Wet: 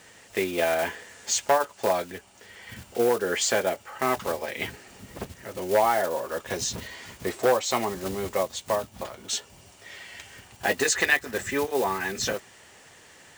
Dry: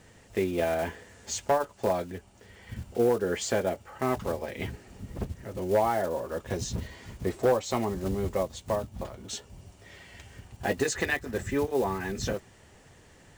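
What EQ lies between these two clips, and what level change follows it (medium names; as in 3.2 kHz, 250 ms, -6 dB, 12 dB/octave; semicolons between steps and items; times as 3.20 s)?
tilt EQ +4 dB/octave; treble shelf 4.3 kHz -12 dB; +6.0 dB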